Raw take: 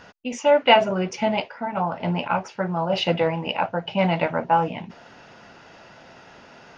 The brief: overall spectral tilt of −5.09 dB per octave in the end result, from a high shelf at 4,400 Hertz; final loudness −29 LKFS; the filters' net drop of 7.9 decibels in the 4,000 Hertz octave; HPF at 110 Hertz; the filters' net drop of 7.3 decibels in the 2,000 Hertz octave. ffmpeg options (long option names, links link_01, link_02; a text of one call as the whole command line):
ffmpeg -i in.wav -af "highpass=110,equalizer=frequency=2000:width_type=o:gain=-6.5,equalizer=frequency=4000:width_type=o:gain=-4,highshelf=frequency=4400:gain=-9,volume=-5dB" out.wav